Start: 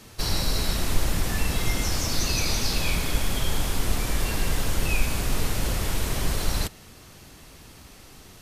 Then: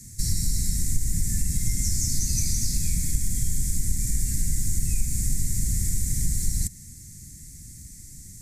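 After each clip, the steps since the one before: EQ curve 360 Hz 0 dB, 1200 Hz -17 dB, 2000 Hz -4 dB, 2900 Hz -29 dB, 7400 Hz +8 dB, 14000 Hz -3 dB; compressor 2:1, threshold -27 dBFS, peak gain reduction 8 dB; Chebyshev band-stop 160–3000 Hz, order 2; gain +6 dB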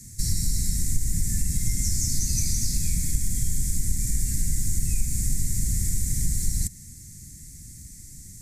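nothing audible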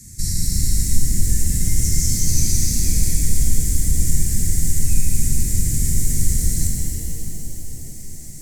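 on a send: tape echo 0.153 s, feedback 79%, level -4.5 dB, low-pass 2400 Hz; on the sum: shimmer reverb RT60 3.4 s, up +7 st, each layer -8 dB, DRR -0.5 dB; gain +2 dB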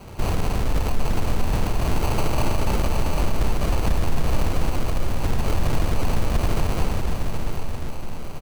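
limiter -12 dBFS, peak gain reduction 10 dB; sample-and-hold 25×; echo 0.771 s -8 dB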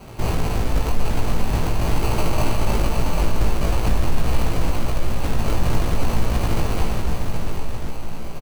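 doubler 18 ms -3.5 dB

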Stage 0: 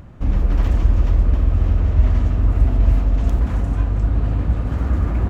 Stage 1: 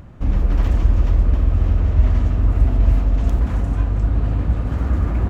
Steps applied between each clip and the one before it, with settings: nothing audible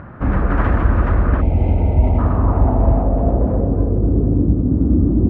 low-pass sweep 1500 Hz -> 300 Hz, 1.74–4.61; HPF 140 Hz 6 dB/oct; spectral gain 1.41–2.19, 960–2000 Hz -24 dB; gain +8.5 dB

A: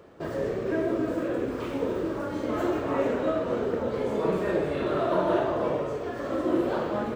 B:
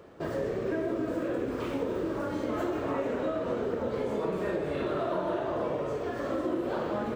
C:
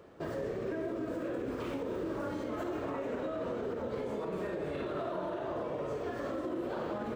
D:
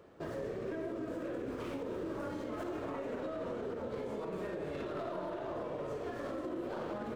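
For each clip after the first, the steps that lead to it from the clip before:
compressor, threshold -27 dBFS, peak gain reduction 8 dB
limiter -24.5 dBFS, peak gain reduction 5.5 dB; gain -3.5 dB
tracing distortion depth 0.056 ms; gain -3 dB

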